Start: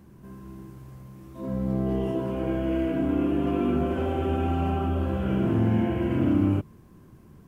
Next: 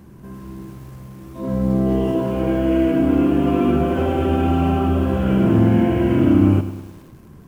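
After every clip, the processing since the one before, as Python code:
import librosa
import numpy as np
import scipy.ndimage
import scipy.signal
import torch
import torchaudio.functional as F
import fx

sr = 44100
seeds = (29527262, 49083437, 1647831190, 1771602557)

y = fx.echo_crushed(x, sr, ms=103, feedback_pct=55, bits=8, wet_db=-12.5)
y = F.gain(torch.from_numpy(y), 7.5).numpy()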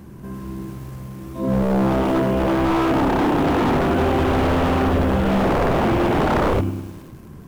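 y = 10.0 ** (-16.5 / 20.0) * (np.abs((x / 10.0 ** (-16.5 / 20.0) + 3.0) % 4.0 - 2.0) - 1.0)
y = F.gain(torch.from_numpy(y), 3.5).numpy()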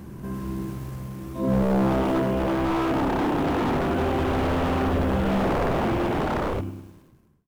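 y = fx.fade_out_tail(x, sr, length_s=2.27)
y = fx.rider(y, sr, range_db=5, speed_s=2.0)
y = F.gain(torch.from_numpy(y), -4.5).numpy()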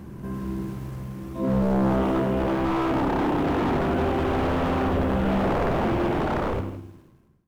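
y = fx.high_shelf(x, sr, hz=4500.0, db=-5.5)
y = np.clip(10.0 ** (18.5 / 20.0) * y, -1.0, 1.0) / 10.0 ** (18.5 / 20.0)
y = y + 10.0 ** (-12.5 / 20.0) * np.pad(y, (int(163 * sr / 1000.0), 0))[:len(y)]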